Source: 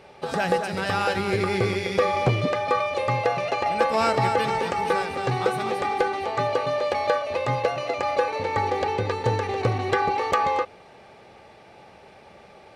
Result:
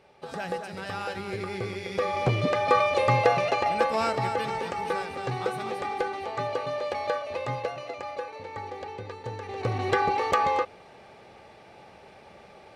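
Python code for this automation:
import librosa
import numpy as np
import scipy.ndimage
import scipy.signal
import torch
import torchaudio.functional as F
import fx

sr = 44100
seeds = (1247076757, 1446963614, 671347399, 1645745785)

y = fx.gain(x, sr, db=fx.line((1.71, -9.5), (2.77, 2.0), (3.33, 2.0), (4.18, -6.0), (7.44, -6.0), (8.32, -13.0), (9.35, -13.0), (9.84, -1.5)))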